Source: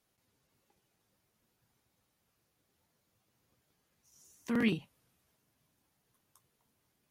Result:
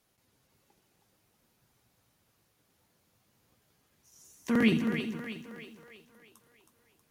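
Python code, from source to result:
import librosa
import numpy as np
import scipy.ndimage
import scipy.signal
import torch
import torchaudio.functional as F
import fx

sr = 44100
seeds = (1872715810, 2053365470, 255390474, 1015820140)

y = fx.echo_split(x, sr, split_hz=380.0, low_ms=213, high_ms=319, feedback_pct=52, wet_db=-6.5)
y = fx.echo_crushed(y, sr, ms=82, feedback_pct=55, bits=10, wet_db=-15.0)
y = F.gain(torch.from_numpy(y), 5.0).numpy()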